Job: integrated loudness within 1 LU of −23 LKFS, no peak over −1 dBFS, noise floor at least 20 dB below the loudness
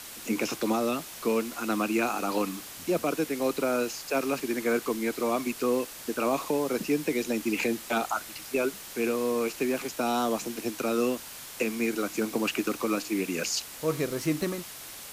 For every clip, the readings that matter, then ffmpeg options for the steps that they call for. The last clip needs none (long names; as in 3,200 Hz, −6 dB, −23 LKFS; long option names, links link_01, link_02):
background noise floor −43 dBFS; target noise floor −49 dBFS; integrated loudness −29.0 LKFS; sample peak −14.5 dBFS; target loudness −23.0 LKFS
→ -af "afftdn=noise_reduction=6:noise_floor=-43"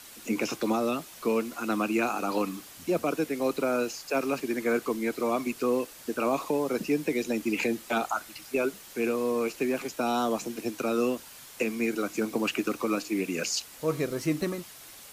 background noise floor −48 dBFS; target noise floor −50 dBFS
→ -af "afftdn=noise_reduction=6:noise_floor=-48"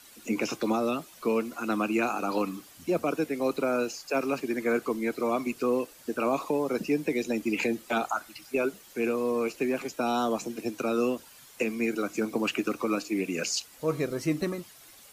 background noise floor −53 dBFS; integrated loudness −29.5 LKFS; sample peak −15.0 dBFS; target loudness −23.0 LKFS
→ -af "volume=6.5dB"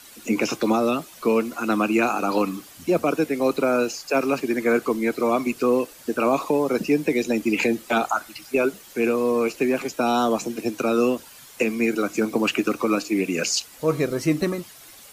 integrated loudness −23.0 LKFS; sample peak −8.5 dBFS; background noise floor −46 dBFS